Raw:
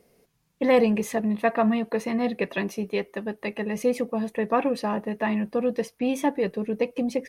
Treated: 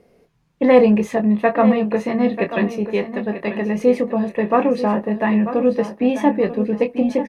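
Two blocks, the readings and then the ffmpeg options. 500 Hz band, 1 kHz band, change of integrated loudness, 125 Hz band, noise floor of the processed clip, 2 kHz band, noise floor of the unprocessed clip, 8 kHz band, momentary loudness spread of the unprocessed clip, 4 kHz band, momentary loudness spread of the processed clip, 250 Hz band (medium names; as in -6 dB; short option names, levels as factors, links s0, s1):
+7.5 dB, +6.5 dB, +7.5 dB, +8.5 dB, -57 dBFS, +5.0 dB, -70 dBFS, no reading, 7 LU, +2.0 dB, 8 LU, +8.0 dB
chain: -filter_complex "[0:a]aemphasis=mode=reproduction:type=75kf,asplit=2[s0][s1];[s1]adelay=24,volume=0.398[s2];[s0][s2]amix=inputs=2:normalize=0,aecho=1:1:939|1878|2817:0.266|0.0772|0.0224,volume=2.11"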